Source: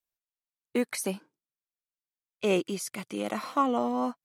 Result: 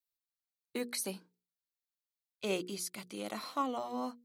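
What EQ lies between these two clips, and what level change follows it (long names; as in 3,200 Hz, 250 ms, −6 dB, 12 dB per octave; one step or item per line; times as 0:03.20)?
parametric band 4,200 Hz +9 dB 0.46 octaves
high-shelf EQ 8,300 Hz +9.5 dB
mains-hum notches 60/120/180/240/300/360/420/480 Hz
−8.5 dB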